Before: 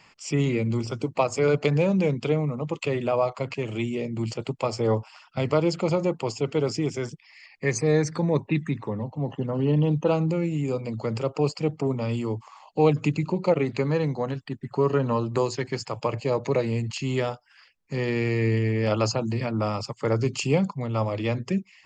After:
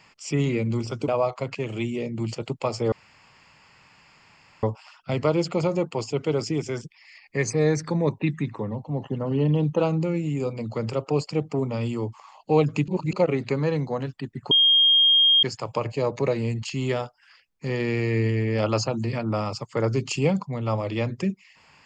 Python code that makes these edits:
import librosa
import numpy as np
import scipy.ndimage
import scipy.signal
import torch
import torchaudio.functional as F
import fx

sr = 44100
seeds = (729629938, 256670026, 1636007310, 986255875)

y = fx.edit(x, sr, fx.cut(start_s=1.08, length_s=1.99),
    fx.insert_room_tone(at_s=4.91, length_s=1.71),
    fx.reverse_span(start_s=13.16, length_s=0.25),
    fx.bleep(start_s=14.79, length_s=0.92, hz=3230.0, db=-14.0), tone=tone)